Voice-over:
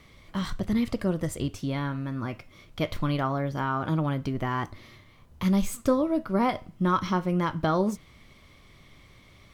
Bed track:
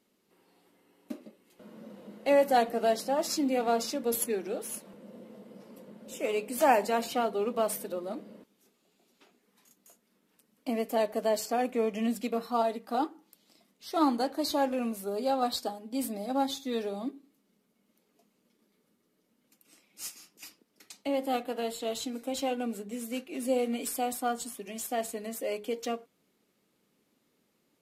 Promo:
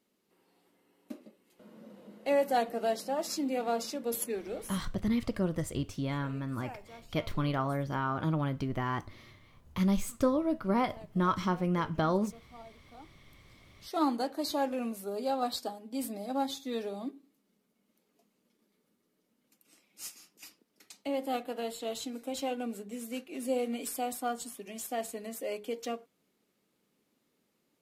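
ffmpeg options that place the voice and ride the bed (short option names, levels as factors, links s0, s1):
-filter_complex "[0:a]adelay=4350,volume=0.631[s0];[1:a]volume=6.31,afade=t=out:st=4.6:d=0.41:silence=0.112202,afade=t=in:st=13.12:d=0.68:silence=0.1[s1];[s0][s1]amix=inputs=2:normalize=0"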